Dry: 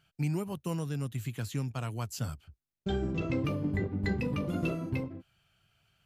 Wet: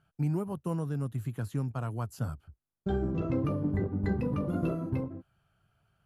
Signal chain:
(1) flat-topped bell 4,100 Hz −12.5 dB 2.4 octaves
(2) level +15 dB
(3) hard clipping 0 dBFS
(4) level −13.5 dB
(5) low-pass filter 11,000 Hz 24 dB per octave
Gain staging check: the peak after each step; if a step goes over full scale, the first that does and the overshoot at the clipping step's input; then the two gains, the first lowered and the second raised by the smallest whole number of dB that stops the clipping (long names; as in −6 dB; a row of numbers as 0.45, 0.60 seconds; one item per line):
−19.0, −4.0, −4.0, −17.5, −17.5 dBFS
no step passes full scale